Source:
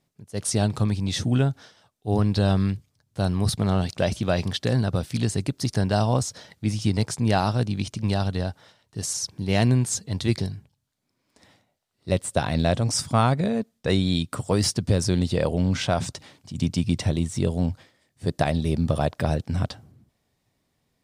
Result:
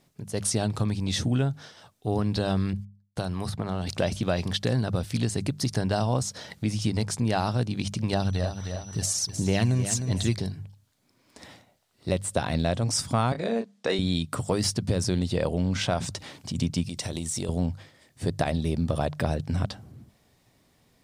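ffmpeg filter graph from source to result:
ffmpeg -i in.wav -filter_complex "[0:a]asettb=1/sr,asplit=3[link_01][link_02][link_03];[link_01]atrim=end=2.734[link_04];[link_02]atrim=start=2.73:end=3.87,asetpts=PTS-STARTPTS,afade=type=in:duration=0.004:curve=qsin,afade=type=out:start_time=1.136:duration=0.004:curve=qsin,agate=range=-32dB:threshold=-53dB:ratio=16:release=100:detection=peak,acrossover=split=690|2100[link_05][link_06][link_07];[link_05]acompressor=threshold=-30dB:ratio=4[link_08];[link_06]acompressor=threshold=-38dB:ratio=4[link_09];[link_07]acompressor=threshold=-43dB:ratio=4[link_10];[link_08][link_09][link_10]amix=inputs=3:normalize=0,adynamicequalizer=threshold=0.00355:dfrequency=1600:dqfactor=0.7:tfrequency=1600:tqfactor=0.7:attack=5:release=100:ratio=0.375:range=3:mode=cutabove:tftype=highshelf[link_11];[link_03]atrim=start=3.866[link_12];[link_04][link_11]acrossfade=duration=0.004:curve1=hsin:curve2=qsin[link_13];[link_13][link_12]acrossfade=duration=0.004:curve1=qsin:curve2=hsin,asettb=1/sr,asplit=3[link_14][link_15][link_16];[link_14]atrim=end=8.134[link_17];[link_15]atrim=start=8.13:end=10.35,asetpts=PTS-STARTPTS,afade=type=in:duration=0.004:curve=qsin,afade=type=out:start_time=2.216:duration=0.004:curve=qsin,aphaser=in_gain=1:out_gain=1:delay=1.7:decay=0.43:speed=1.5:type=sinusoidal,aeval=exprs='val(0)+0.00251*sin(2*PI*5900*n/s)':channel_layout=same,aecho=1:1:307|614|921:0.251|0.0703|0.0197,atrim=end_sample=97902[link_18];[link_16]atrim=start=10.346[link_19];[link_17][link_18]acrossfade=duration=0.004:curve1=hsin:curve2=qsin[link_20];[link_20][link_19]acrossfade=duration=0.004:curve1=qsin:curve2=hsin,asettb=1/sr,asplit=3[link_21][link_22][link_23];[link_21]atrim=end=13.324[link_24];[link_22]atrim=start=13.32:end=13.99,asetpts=PTS-STARTPTS,afade=type=in:duration=0.004:curve=qsin,afade=type=out:start_time=0.666:duration=0.004:curve=qsin,highpass=310,lowpass=7700,asplit=2[link_25][link_26];[link_26]adelay=26,volume=-6.5dB[link_27];[link_25][link_27]amix=inputs=2:normalize=0,atrim=end_sample=29547[link_28];[link_23]atrim=start=13.986[link_29];[link_24][link_28]acrossfade=duration=0.004:curve1=hsin:curve2=qsin[link_30];[link_30][link_29]acrossfade=duration=0.004:curve1=qsin:curve2=hsin,asettb=1/sr,asplit=3[link_31][link_32][link_33];[link_31]atrim=end=16.844[link_34];[link_32]atrim=start=16.84:end=17.49,asetpts=PTS-STARTPTS,afade=type=in:duration=0.004:curve=qsin,afade=type=out:start_time=0.646:duration=0.004:curve=qsin,bass=frequency=250:gain=-5,treble=frequency=4000:gain=9,acompressor=threshold=-31dB:ratio=4:attack=3.2:release=140:knee=1:detection=peak[link_35];[link_33]atrim=start=17.486[link_36];[link_34][link_35]acrossfade=duration=0.004:curve1=hsin:curve2=qsin[link_37];[link_37][link_36]acrossfade=duration=0.004:curve1=qsin:curve2=hsin,bandreject=frequency=50:width_type=h:width=6,bandreject=frequency=100:width_type=h:width=6,bandreject=frequency=150:width_type=h:width=6,bandreject=frequency=200:width_type=h:width=6,acompressor=threshold=-41dB:ratio=2,volume=9dB" out.wav

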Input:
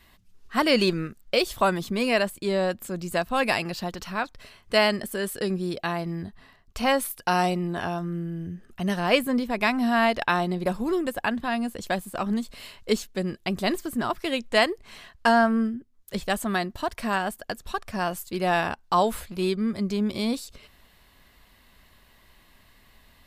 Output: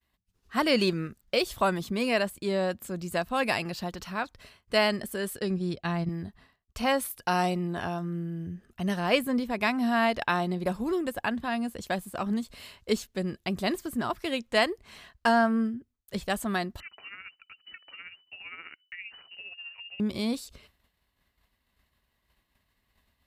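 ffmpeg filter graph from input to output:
ffmpeg -i in.wav -filter_complex "[0:a]asettb=1/sr,asplit=3[link_01][link_02][link_03];[link_01]atrim=end=5.384[link_04];[link_02]atrim=start=5.38:end=6.09,asetpts=PTS-STARTPTS,afade=type=in:duration=0.004:curve=qsin,afade=type=out:start_time=0.706:duration=0.004:curve=qsin,agate=range=-8dB:threshold=-32dB:ratio=16:release=100:detection=peak,lowpass=8000,asubboost=boost=10.5:cutoff=250[link_05];[link_03]atrim=start=6.086[link_06];[link_04][link_05]acrossfade=duration=0.004:curve1=hsin:curve2=qsin[link_07];[link_07][link_06]acrossfade=duration=0.004:curve1=qsin:curve2=hsin,asettb=1/sr,asplit=3[link_08][link_09][link_10];[link_08]atrim=end=16.804[link_11];[link_09]atrim=start=16.8:end=20,asetpts=PTS-STARTPTS,afade=type=in:duration=0.004:curve=qsin,afade=type=out:start_time=3.196:duration=0.004:curve=qsin,acompressor=threshold=-41dB:ratio=2.5:attack=3.2:release=140:knee=1:detection=peak,tremolo=f=15:d=0.55,lowpass=frequency=2600:width_type=q:width=0.5098,lowpass=frequency=2600:width_type=q:width=0.6013,lowpass=frequency=2600:width_type=q:width=0.9,lowpass=frequency=2600:width_type=q:width=2.563,afreqshift=-3000[link_12];[link_10]atrim=start=19.996[link_13];[link_11][link_12]acrossfade=duration=0.004:curve1=hsin:curve2=qsin[link_14];[link_14][link_13]acrossfade=duration=0.004:curve1=qsin:curve2=hsin,agate=range=-33dB:threshold=-46dB:ratio=3:detection=peak,highpass=51,lowshelf=frequency=69:gain=9,volume=-3.5dB" out.wav

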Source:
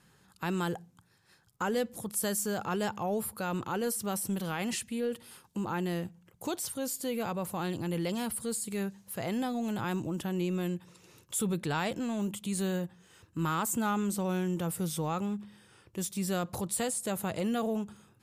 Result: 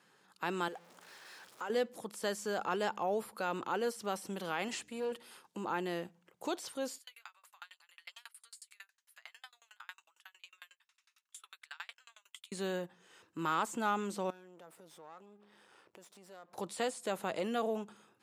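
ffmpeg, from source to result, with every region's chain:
ffmpeg -i in.wav -filter_complex "[0:a]asettb=1/sr,asplit=3[link_01][link_02][link_03];[link_01]atrim=end=0.684[link_04];[link_02]atrim=start=0.68:end=1.7,asetpts=PTS-STARTPTS,afade=type=in:duration=0.004:curve=qsin,afade=type=out:start_time=1.016:duration=0.004:curve=qsin,aeval=exprs='val(0)+0.5*0.00501*sgn(val(0))':channel_layout=same,highpass=frequency=400:poles=1,acompressor=threshold=-49dB:ratio=1.5:attack=3.2:release=140:knee=1:detection=peak[link_05];[link_03]atrim=start=1.696[link_06];[link_04][link_05]acrossfade=duration=0.004:curve1=hsin:curve2=qsin[link_07];[link_07][link_06]acrossfade=duration=0.004:curve1=qsin:curve2=hsin,asettb=1/sr,asplit=3[link_08][link_09][link_10];[link_08]atrim=end=4.684[link_11];[link_09]atrim=start=4.68:end=5.12,asetpts=PTS-STARTPTS,afade=type=in:duration=0.004:curve=qsin,afade=type=out:start_time=0.436:duration=0.004:curve=qsin,aeval=exprs='if(lt(val(0),0),0.447*val(0),val(0))':channel_layout=same,equalizer=frequency=7500:width=2.9:gain=7,aeval=exprs='val(0)+0.00282*(sin(2*PI*60*n/s)+sin(2*PI*2*60*n/s)/2+sin(2*PI*3*60*n/s)/3+sin(2*PI*4*60*n/s)/4+sin(2*PI*5*60*n/s)/5)':channel_layout=same[link_12];[link_10]atrim=start=5.116[link_13];[link_11][link_12]acrossfade=duration=0.004:curve1=hsin:curve2=qsin[link_14];[link_14][link_13]acrossfade=duration=0.004:curve1=qsin:curve2=hsin,asettb=1/sr,asplit=3[link_15][link_16][link_17];[link_15]atrim=end=6.984[link_18];[link_16]atrim=start=6.98:end=12.52,asetpts=PTS-STARTPTS,afade=type=in:duration=0.004:curve=qsin,afade=type=out:start_time=5.536:duration=0.004:curve=qsin,highpass=frequency=1300:width=0.5412,highpass=frequency=1300:width=1.3066,asplit=2[link_19][link_20];[link_20]adelay=13,volume=-11dB[link_21];[link_19][link_21]amix=inputs=2:normalize=0,atrim=end_sample=244314,aeval=exprs='val(0)*pow(10,-38*if(lt(mod(11*n/s,1),2*abs(11)/1000),1-mod(11*n/s,1)/(2*abs(11)/1000),(mod(11*n/s,1)-2*abs(11)/1000)/(1-2*abs(11)/1000))/20)':channel_layout=same[link_22];[link_17]atrim=start=12.516[link_23];[link_18][link_22]acrossfade=duration=0.004:curve1=hsin:curve2=qsin[link_24];[link_24][link_23]acrossfade=duration=0.004:curve1=qsin:curve2=hsin,asettb=1/sr,asplit=3[link_25][link_26][link_27];[link_25]atrim=end=14.304[link_28];[link_26]atrim=start=14.3:end=16.58,asetpts=PTS-STARTPTS,afade=type=in:duration=0.004:curve=qsin,afade=type=out:start_time=2.276:duration=0.004:curve=qsin,aeval=exprs='if(lt(val(0),0),0.251*val(0),val(0))':channel_layout=same,equalizer=frequency=820:width_type=o:width=2:gain=4.5,acompressor=threshold=-53dB:ratio=3:attack=3.2:release=140:knee=1:detection=peak[link_29];[link_27]atrim=start=16.576[link_30];[link_28][link_29]acrossfade=duration=0.004:curve1=hsin:curve2=qsin[link_31];[link_31][link_30]acrossfade=duration=0.004:curve1=qsin:curve2=hsin,highpass=340,highshelf=frequency=8000:gain=-11.5,acrossover=split=6700[link_32][link_33];[link_33]acompressor=threshold=-52dB:ratio=4:attack=1:release=60[link_34];[link_32][link_34]amix=inputs=2:normalize=0" out.wav

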